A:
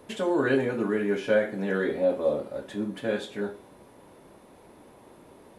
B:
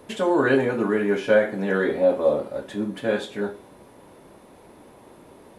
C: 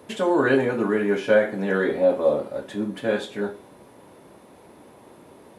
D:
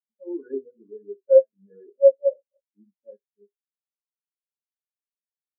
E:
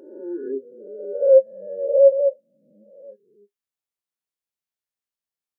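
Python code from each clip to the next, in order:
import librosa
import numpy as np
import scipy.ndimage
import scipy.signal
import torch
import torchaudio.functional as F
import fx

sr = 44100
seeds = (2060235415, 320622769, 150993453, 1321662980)

y1 = fx.dynamic_eq(x, sr, hz=950.0, q=1.0, threshold_db=-36.0, ratio=4.0, max_db=4)
y1 = y1 * librosa.db_to_amplitude(3.5)
y2 = scipy.signal.sosfilt(scipy.signal.butter(2, 70.0, 'highpass', fs=sr, output='sos'), y1)
y3 = fx.spectral_expand(y2, sr, expansion=4.0)
y3 = y3 * librosa.db_to_amplitude(1.5)
y4 = fx.spec_swells(y3, sr, rise_s=1.02)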